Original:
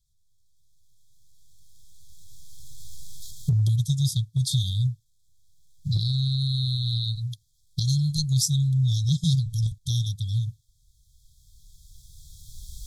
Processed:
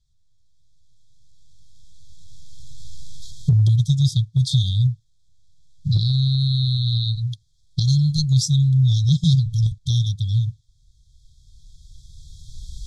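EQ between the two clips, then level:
high-frequency loss of the air 91 metres
+6.0 dB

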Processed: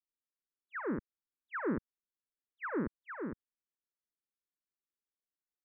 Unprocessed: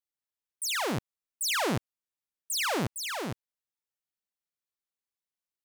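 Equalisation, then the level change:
Butterworth low-pass 1,800 Hz 48 dB per octave
high-frequency loss of the air 380 metres
phaser with its sweep stopped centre 300 Hz, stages 4
0.0 dB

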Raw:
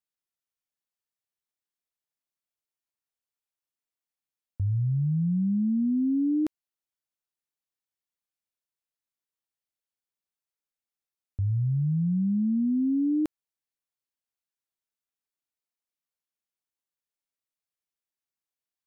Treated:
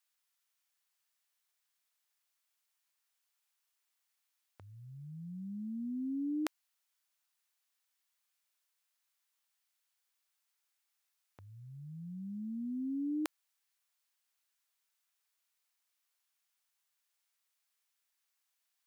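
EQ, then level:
high-pass filter 950 Hz 12 dB per octave
+10.0 dB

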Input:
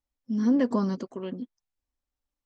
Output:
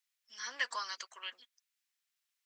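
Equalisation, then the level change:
four-pole ladder high-pass 1,400 Hz, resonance 20%
+13.0 dB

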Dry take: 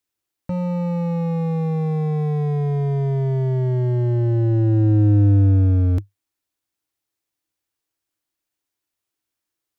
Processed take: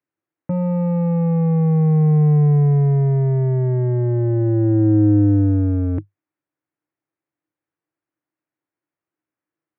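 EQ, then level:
loudspeaker in its box 110–2,100 Hz, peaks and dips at 150 Hz +9 dB, 310 Hz +6 dB, 540 Hz +3 dB
0.0 dB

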